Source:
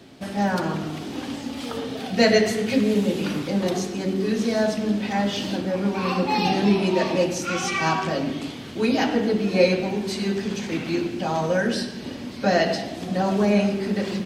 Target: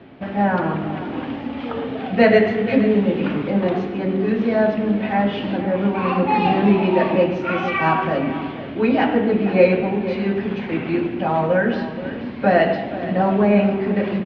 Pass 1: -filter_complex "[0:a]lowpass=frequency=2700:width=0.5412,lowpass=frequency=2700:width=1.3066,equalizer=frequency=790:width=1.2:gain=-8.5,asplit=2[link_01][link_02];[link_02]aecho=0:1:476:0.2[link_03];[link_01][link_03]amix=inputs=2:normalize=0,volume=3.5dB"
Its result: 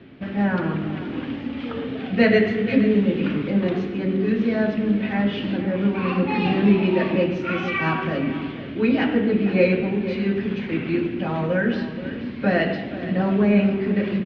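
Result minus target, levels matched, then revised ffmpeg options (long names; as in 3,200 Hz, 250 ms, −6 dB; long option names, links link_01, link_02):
1,000 Hz band −6.5 dB
-filter_complex "[0:a]lowpass=frequency=2700:width=0.5412,lowpass=frequency=2700:width=1.3066,equalizer=frequency=790:width=1.2:gain=2,asplit=2[link_01][link_02];[link_02]aecho=0:1:476:0.2[link_03];[link_01][link_03]amix=inputs=2:normalize=0,volume=3.5dB"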